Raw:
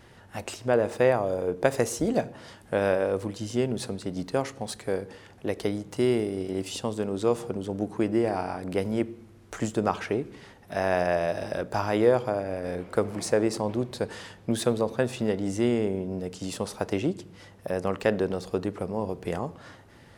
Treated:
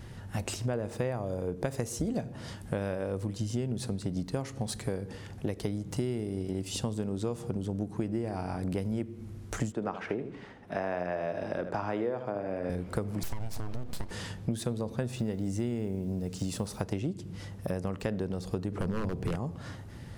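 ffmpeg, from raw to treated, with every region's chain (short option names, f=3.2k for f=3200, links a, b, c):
-filter_complex "[0:a]asettb=1/sr,asplit=3[a][b][c];[a]atrim=end=9.724[d];[b]atrim=start=9.72:end=12.7,asetpts=PTS-STARTPTS,afade=t=in:d=0.004:c=qsin,afade=t=out:st=2.976:d=0.004:c=qsin,lowpass=8.5k,acrossover=split=220 2900:gain=0.178 1 0.224[e][f][g];[e][f][g]amix=inputs=3:normalize=0,aecho=1:1:78:0.282,atrim=end_sample=131418[h];[c]atrim=start=12.696[i];[d][h]acrossfade=d=0.004:c1=hsin:c2=qsin[j];[j][i]acrossfade=d=0.004:c1=qsin:c2=hsin,asettb=1/sr,asplit=3[k][l][m];[k]atrim=end=13.234[n];[l]atrim=start=13.23:end=14.11,asetpts=PTS-STARTPTS,afade=t=in:d=0.004:c=qsin,afade=t=out:st=0.876:d=0.004:c=qsin,acompressor=threshold=-31dB:ratio=3:attack=3.2:release=140:knee=1:detection=peak,aeval=exprs='abs(val(0))':c=same[o];[m]atrim=start=14.106[p];[n][o]acrossfade=d=0.004:c1=hsin:c2=qsin[q];[q][p]acrossfade=d=0.004:c1=qsin:c2=hsin,asettb=1/sr,asplit=3[r][s][t];[r]atrim=end=15.094[u];[s]atrim=start=15.09:end=16.78,asetpts=PTS-STARTPTS,afade=t=in:d=0.004:c=qsin,afade=t=out:st=1.686:d=0.004:c=qsin,bandreject=f=3.2k:w=28,acrusher=bits=8:mix=0:aa=0.5[v];[t]atrim=start=16.776[w];[u][v]acrossfade=d=0.004:c1=hsin:c2=qsin[x];[x][w]acrossfade=d=0.004:c1=qsin:c2=hsin,asettb=1/sr,asplit=3[y][z][aa];[y]atrim=end=18.724[ab];[z]atrim=start=18.72:end=19.36,asetpts=PTS-STARTPTS,afade=t=in:d=0.004:c=qsin,afade=t=out:st=0.636:d=0.004:c=qsin,highshelf=f=3.7k:g=-6.5,aeval=exprs='0.0562*(abs(mod(val(0)/0.0562+3,4)-2)-1)':c=same,acontrast=82[ac];[aa]atrim=start=19.356[ad];[ab][ac]acrossfade=d=0.004:c1=hsin:c2=qsin[ae];[ae][ad]acrossfade=d=0.004:c1=qsin:c2=hsin,bass=f=250:g=12,treble=f=4k:g=4,acompressor=threshold=-29dB:ratio=6"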